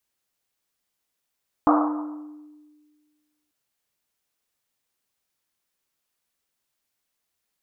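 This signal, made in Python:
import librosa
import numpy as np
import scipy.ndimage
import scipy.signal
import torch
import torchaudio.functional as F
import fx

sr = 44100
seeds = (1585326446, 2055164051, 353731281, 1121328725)

y = fx.risset_drum(sr, seeds[0], length_s=1.84, hz=300.0, decay_s=1.74, noise_hz=950.0, noise_width_hz=620.0, noise_pct=40)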